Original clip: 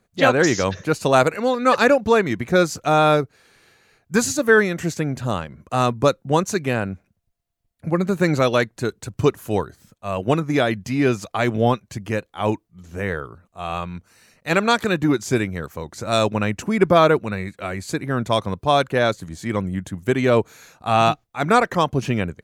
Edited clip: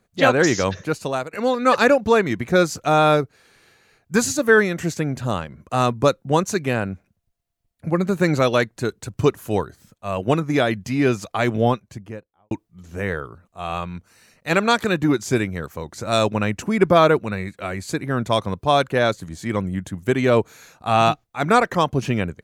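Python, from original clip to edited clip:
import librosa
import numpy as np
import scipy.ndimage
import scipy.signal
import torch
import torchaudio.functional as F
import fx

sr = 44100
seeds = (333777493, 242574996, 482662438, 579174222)

y = fx.studio_fade_out(x, sr, start_s=11.55, length_s=0.96)
y = fx.edit(y, sr, fx.fade_out_to(start_s=0.72, length_s=0.61, floor_db=-21.5), tone=tone)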